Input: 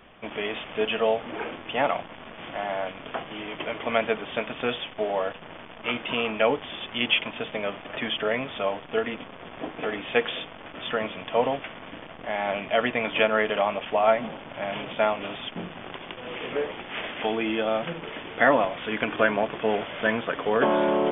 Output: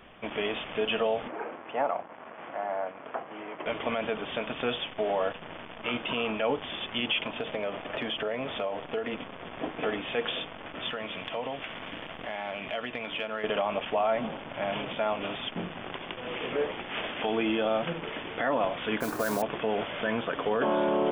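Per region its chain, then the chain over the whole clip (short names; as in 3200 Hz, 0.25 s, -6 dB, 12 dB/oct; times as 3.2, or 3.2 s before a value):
1.28–3.66 band-pass 830 Hz, Q 0.64 + air absorption 490 m + mismatched tape noise reduction encoder only
7.24–9.13 dynamic EQ 550 Hz, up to +5 dB, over -39 dBFS, Q 1 + compressor 5:1, threshold -28 dBFS
10.89–13.44 high shelf 2600 Hz +8.5 dB + compressor 3:1, threshold -33 dBFS
19–19.42 LPF 1800 Hz 24 dB/oct + modulation noise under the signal 12 dB
whole clip: dynamic EQ 2000 Hz, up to -4 dB, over -40 dBFS, Q 2.8; limiter -18 dBFS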